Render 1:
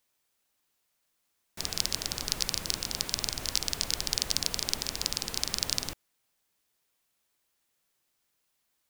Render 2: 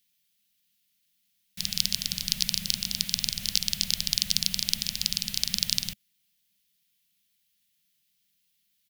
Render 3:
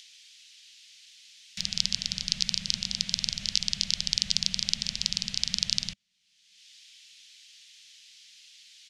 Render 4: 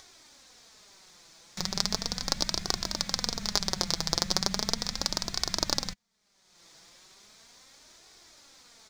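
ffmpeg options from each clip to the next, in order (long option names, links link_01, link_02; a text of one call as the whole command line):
ffmpeg -i in.wav -af "firequalizer=gain_entry='entry(110,0);entry(200,12);entry(300,-26);entry(580,-11);entry(960,-16);entry(1900,0);entry(3100,8);entry(7900,1);entry(12000,7)':delay=0.05:min_phase=1,volume=-1.5dB" out.wav
ffmpeg -i in.wav -filter_complex "[0:a]lowpass=frequency=6800:width=0.5412,lowpass=frequency=6800:width=1.3066,acrossover=split=1700[link_01][link_02];[link_01]alimiter=level_in=12dB:limit=-24dB:level=0:latency=1:release=31,volume=-12dB[link_03];[link_02]acompressor=mode=upward:threshold=-32dB:ratio=2.5[link_04];[link_03][link_04]amix=inputs=2:normalize=0" out.wav
ffmpeg -i in.wav -filter_complex "[0:a]equalizer=frequency=2900:width=3:gain=-14.5,asplit=2[link_01][link_02];[link_02]acrusher=samples=8:mix=1:aa=0.000001,volume=-5.5dB[link_03];[link_01][link_03]amix=inputs=2:normalize=0,flanger=delay=2.6:depth=3.6:regen=38:speed=0.37:shape=triangular,volume=4dB" out.wav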